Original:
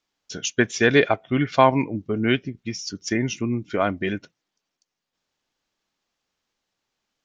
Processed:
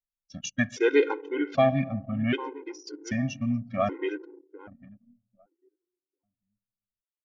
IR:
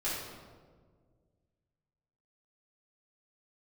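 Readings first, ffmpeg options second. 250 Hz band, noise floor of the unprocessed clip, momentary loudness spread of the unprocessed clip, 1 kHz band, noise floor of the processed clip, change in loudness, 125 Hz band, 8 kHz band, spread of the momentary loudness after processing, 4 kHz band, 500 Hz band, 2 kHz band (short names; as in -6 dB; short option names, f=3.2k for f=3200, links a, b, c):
-5.0 dB, -83 dBFS, 13 LU, -8.5 dB, under -85 dBFS, -5.0 dB, -4.5 dB, n/a, 17 LU, -10.5 dB, -3.5 dB, -8.0 dB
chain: -filter_complex "[0:a]highshelf=f=2.9k:g=-6.5,asplit=2[a][b];[b]adelay=799,lowpass=f=2.8k:p=1,volume=-15.5dB,asplit=2[c][d];[d]adelay=799,lowpass=f=2.8k:p=1,volume=0.36,asplit=2[e][f];[f]adelay=799,lowpass=f=2.8k:p=1,volume=0.36[g];[a][c][e][g]amix=inputs=4:normalize=0,asplit=2[h][i];[1:a]atrim=start_sample=2205[j];[i][j]afir=irnorm=-1:irlink=0,volume=-20.5dB[k];[h][k]amix=inputs=2:normalize=0,anlmdn=2.51,afftfilt=real='re*gt(sin(2*PI*0.64*pts/sr)*(1-2*mod(floor(b*sr/1024/270),2)),0)':imag='im*gt(sin(2*PI*0.64*pts/sr)*(1-2*mod(floor(b*sr/1024/270),2)),0)':win_size=1024:overlap=0.75,volume=-2.5dB"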